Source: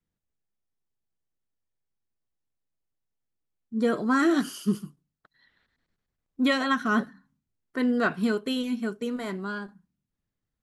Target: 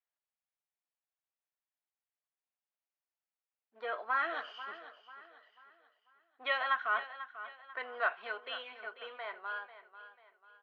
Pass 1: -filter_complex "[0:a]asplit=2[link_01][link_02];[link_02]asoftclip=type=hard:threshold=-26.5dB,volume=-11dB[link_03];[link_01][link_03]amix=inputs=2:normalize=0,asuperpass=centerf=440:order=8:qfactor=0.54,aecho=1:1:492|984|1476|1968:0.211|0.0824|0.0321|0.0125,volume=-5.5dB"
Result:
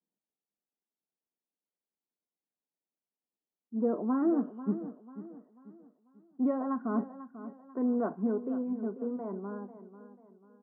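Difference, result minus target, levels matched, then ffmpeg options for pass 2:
1,000 Hz band −9.0 dB
-filter_complex "[0:a]asplit=2[link_01][link_02];[link_02]asoftclip=type=hard:threshold=-26.5dB,volume=-11dB[link_03];[link_01][link_03]amix=inputs=2:normalize=0,asuperpass=centerf=1400:order=8:qfactor=0.54,aecho=1:1:492|984|1476|1968:0.211|0.0824|0.0321|0.0125,volume=-5.5dB"

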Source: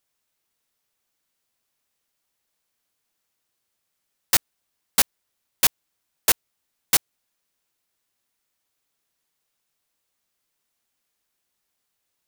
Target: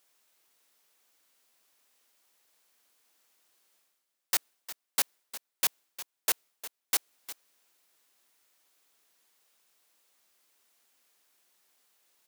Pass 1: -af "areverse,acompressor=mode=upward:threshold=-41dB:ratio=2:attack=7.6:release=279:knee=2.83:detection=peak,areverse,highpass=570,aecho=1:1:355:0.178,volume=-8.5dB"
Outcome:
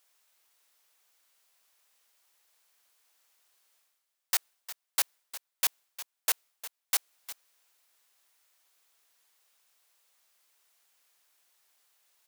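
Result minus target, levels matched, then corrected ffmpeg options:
250 Hz band −9.0 dB
-af "areverse,acompressor=mode=upward:threshold=-41dB:ratio=2:attack=7.6:release=279:knee=2.83:detection=peak,areverse,highpass=280,aecho=1:1:355:0.178,volume=-8.5dB"

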